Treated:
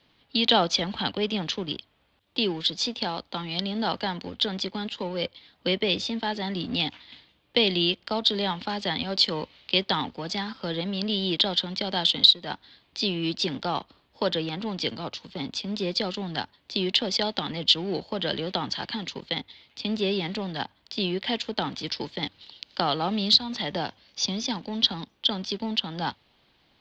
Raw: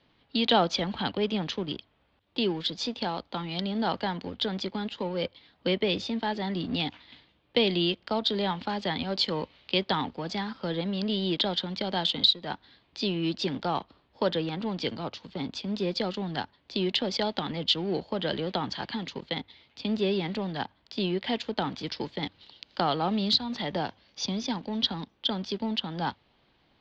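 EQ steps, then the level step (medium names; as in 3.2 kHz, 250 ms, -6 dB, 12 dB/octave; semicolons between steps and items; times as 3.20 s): treble shelf 2.9 kHz +8.5 dB; 0.0 dB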